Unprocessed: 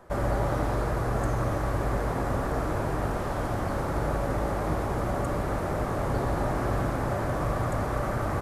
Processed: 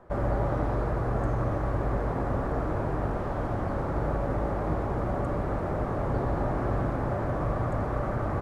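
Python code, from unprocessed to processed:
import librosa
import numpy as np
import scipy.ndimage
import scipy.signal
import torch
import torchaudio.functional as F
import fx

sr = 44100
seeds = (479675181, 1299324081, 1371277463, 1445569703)

y = fx.lowpass(x, sr, hz=1300.0, slope=6)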